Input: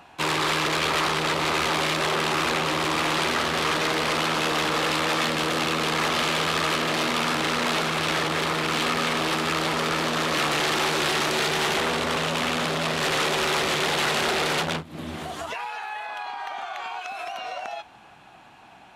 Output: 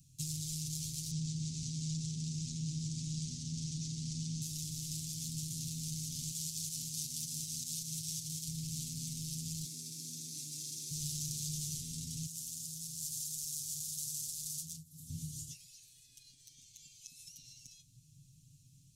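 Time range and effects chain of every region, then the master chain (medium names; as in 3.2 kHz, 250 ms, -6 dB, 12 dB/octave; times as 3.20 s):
1.11–4.42 s: low-pass 7.5 kHz 24 dB/octave + peaking EQ 210 Hz +8.5 dB 1.1 oct
6.31–8.48 s: tilt EQ +1.5 dB/octave + tremolo saw up 5.3 Hz, depth 55%
9.64–10.91 s: CVSD coder 64 kbps + resonant high-pass 310 Hz, resonance Q 1.5 + band-stop 3 kHz, Q 11
12.26–15.10 s: pre-emphasis filter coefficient 0.8 + compression 1.5:1, threshold -39 dBFS
whole clip: compression, threshold -27 dBFS; elliptic band-stop 140–6100 Hz, stop band 70 dB; comb 7.3 ms, depth 80%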